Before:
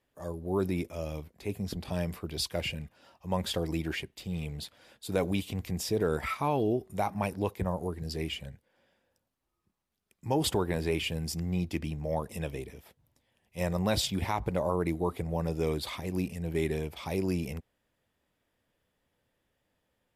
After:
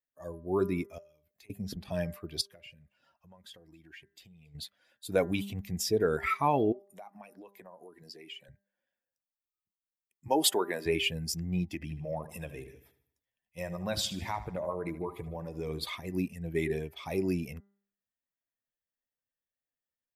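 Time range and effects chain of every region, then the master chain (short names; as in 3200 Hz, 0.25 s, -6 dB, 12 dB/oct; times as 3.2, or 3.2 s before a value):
0.98–1.5 compressor 16:1, threshold -47 dBFS + tilt shelf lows -4 dB, about 1500 Hz
2.41–4.55 compressor, threshold -44 dBFS + echo 0.276 s -20 dB
6.72–8.49 HPF 260 Hz + compressor, threshold -40 dBFS
10.28–10.86 HPF 270 Hz + high shelf 8500 Hz +4.5 dB
11.74–15.85 compressor 2:1, threshold -32 dBFS + feedback echo 76 ms, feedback 60%, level -10.5 dB
whole clip: per-bin expansion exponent 1.5; low shelf 150 Hz -10.5 dB; de-hum 199.6 Hz, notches 10; gain +5.5 dB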